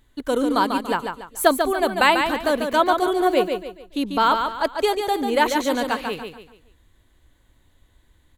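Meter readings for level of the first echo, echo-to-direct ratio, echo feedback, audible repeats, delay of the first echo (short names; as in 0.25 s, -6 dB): -6.0 dB, -5.5 dB, 35%, 4, 0.143 s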